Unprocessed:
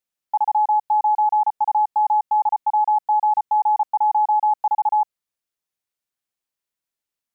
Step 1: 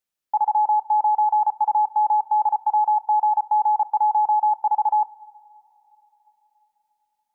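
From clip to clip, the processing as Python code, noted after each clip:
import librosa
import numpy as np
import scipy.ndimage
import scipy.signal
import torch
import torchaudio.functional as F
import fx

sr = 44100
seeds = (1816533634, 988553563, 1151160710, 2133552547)

y = fx.rev_double_slope(x, sr, seeds[0], early_s=0.49, late_s=4.2, knee_db=-18, drr_db=14.5)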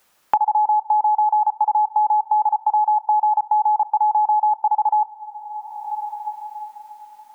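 y = fx.peak_eq(x, sr, hz=1000.0, db=7.5, octaves=1.7)
y = fx.band_squash(y, sr, depth_pct=100)
y = y * 10.0 ** (-5.5 / 20.0)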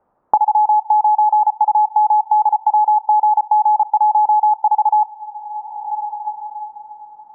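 y = scipy.signal.sosfilt(scipy.signal.butter(4, 1000.0, 'lowpass', fs=sr, output='sos'), x)
y = y * 10.0 ** (5.0 / 20.0)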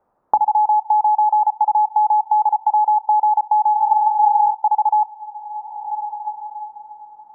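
y = fx.hum_notches(x, sr, base_hz=60, count=5)
y = fx.spec_repair(y, sr, seeds[1], start_s=3.77, length_s=0.74, low_hz=400.0, high_hz=1000.0, source='before')
y = y * 10.0 ** (-2.0 / 20.0)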